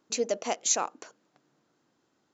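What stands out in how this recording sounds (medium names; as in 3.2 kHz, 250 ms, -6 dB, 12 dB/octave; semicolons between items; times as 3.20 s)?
noise floor -74 dBFS; spectral tilt -0.5 dB/octave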